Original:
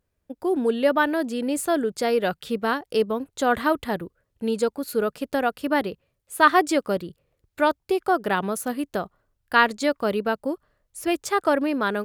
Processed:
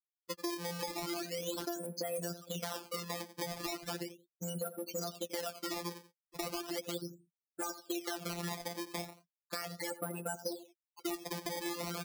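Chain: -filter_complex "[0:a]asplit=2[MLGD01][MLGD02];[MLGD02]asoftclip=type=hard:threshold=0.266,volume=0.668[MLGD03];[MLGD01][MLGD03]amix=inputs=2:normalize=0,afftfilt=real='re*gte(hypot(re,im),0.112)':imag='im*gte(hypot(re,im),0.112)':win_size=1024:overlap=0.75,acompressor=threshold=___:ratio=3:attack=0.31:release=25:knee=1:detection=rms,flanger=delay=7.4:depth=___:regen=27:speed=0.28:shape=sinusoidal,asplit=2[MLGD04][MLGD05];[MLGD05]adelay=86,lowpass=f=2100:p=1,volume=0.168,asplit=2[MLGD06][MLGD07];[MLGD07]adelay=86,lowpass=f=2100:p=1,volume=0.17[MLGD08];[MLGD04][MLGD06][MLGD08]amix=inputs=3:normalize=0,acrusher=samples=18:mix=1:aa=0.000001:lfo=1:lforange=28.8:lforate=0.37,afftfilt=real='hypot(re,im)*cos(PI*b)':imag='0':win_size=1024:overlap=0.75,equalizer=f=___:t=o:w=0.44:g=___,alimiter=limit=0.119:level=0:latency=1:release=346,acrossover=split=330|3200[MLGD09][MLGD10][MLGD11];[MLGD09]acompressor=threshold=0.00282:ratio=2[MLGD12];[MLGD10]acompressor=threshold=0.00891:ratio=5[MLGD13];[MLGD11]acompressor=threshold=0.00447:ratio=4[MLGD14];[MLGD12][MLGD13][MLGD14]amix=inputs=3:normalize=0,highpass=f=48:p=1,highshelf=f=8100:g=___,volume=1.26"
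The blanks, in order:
0.0891, 3.9, 5000, 7.5, 8.5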